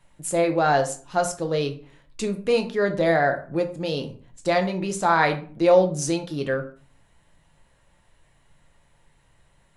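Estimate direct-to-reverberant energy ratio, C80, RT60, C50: 4.5 dB, 16.5 dB, 0.45 s, 12.0 dB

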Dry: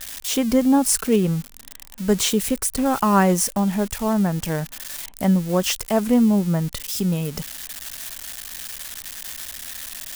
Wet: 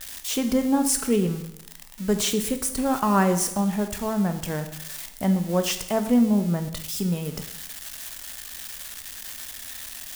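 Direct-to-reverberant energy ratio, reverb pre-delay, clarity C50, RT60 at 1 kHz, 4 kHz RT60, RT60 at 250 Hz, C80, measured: 7.5 dB, 14 ms, 10.0 dB, 0.85 s, 0.75 s, 0.80 s, 12.5 dB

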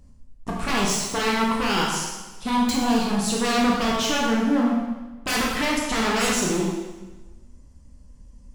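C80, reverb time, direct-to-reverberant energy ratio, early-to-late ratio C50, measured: 3.0 dB, 1.2 s, −3.5 dB, 0.5 dB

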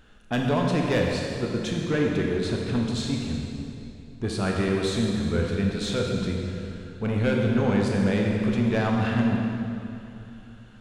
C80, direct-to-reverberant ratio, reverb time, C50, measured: 2.0 dB, −0.5 dB, 2.8 s, 0.5 dB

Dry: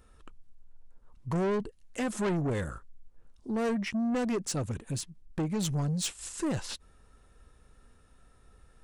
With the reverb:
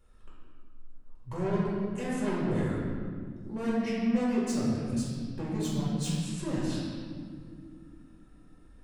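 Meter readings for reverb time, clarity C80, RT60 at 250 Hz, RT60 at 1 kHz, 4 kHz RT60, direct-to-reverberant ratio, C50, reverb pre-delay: 2.3 s, 0.0 dB, 4.1 s, 1.8 s, 1.3 s, −8.0 dB, −2.0 dB, 3 ms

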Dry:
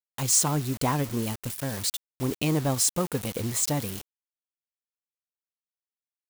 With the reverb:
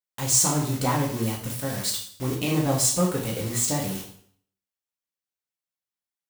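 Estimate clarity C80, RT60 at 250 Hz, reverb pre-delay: 10.0 dB, 0.55 s, 4 ms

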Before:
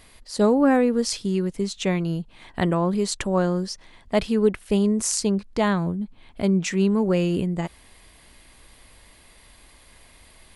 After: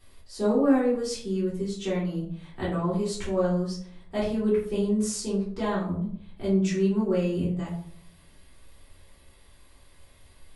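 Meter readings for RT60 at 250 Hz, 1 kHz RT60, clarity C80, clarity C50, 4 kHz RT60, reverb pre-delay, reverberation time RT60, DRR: 0.70 s, 0.55 s, 8.5 dB, 4.5 dB, 0.35 s, 3 ms, 0.60 s, −8.5 dB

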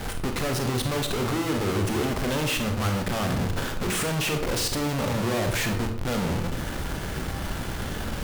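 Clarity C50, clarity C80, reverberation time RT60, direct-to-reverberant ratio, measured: 8.0 dB, 11.0 dB, 0.65 s, 4.5 dB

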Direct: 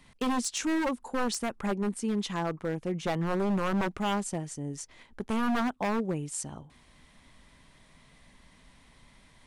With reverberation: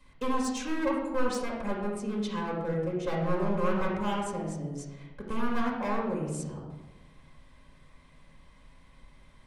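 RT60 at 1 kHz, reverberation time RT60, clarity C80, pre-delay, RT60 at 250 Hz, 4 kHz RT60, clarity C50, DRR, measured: 1.0 s, 1.2 s, 4.5 dB, 4 ms, 1.4 s, 0.65 s, 2.0 dB, −5.0 dB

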